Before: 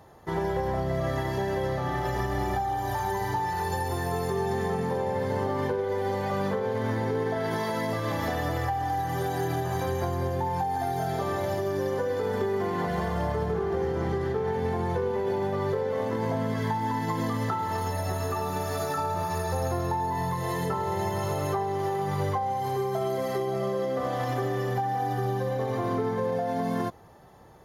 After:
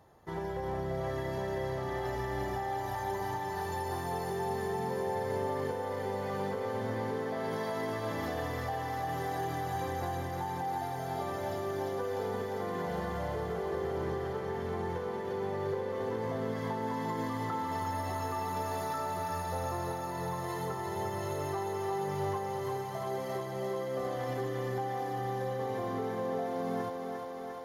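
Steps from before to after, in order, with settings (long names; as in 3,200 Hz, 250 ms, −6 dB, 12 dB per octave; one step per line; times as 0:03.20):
feedback echo with a high-pass in the loop 350 ms, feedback 81%, high-pass 220 Hz, level −5 dB
level −8.5 dB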